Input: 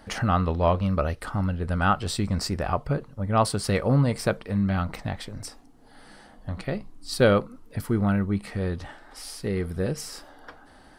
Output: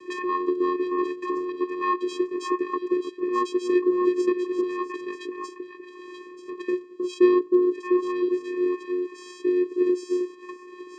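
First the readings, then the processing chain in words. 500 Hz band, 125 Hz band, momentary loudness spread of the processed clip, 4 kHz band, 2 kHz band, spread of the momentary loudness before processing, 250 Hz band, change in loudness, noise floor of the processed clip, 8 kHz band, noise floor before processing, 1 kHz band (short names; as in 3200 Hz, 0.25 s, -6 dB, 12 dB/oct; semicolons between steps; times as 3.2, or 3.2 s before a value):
+4.5 dB, under -35 dB, 17 LU, -8.0 dB, -4.0 dB, 15 LU, +3.0 dB, +0.5 dB, -45 dBFS, under -10 dB, -52 dBFS, -1.0 dB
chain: delay with a stepping band-pass 0.311 s, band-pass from 510 Hz, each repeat 1.4 oct, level -3.5 dB; vocoder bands 8, square 360 Hz; three-band squash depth 40%; gain +2.5 dB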